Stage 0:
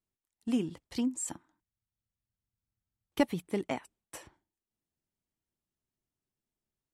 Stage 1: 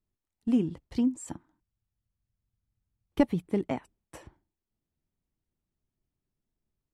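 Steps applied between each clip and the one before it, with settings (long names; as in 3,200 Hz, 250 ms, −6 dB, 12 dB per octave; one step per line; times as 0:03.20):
spectral tilt −2.5 dB per octave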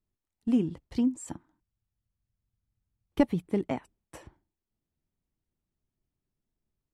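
no processing that can be heard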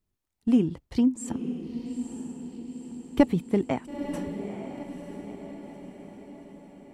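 feedback delay with all-pass diffusion 921 ms, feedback 55%, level −9 dB
level +4 dB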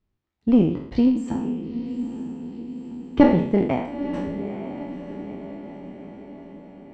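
peak hold with a decay on every bin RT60 0.66 s
high-frequency loss of the air 190 metres
harmonic generator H 6 −20 dB, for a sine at 2.5 dBFS
level +3.5 dB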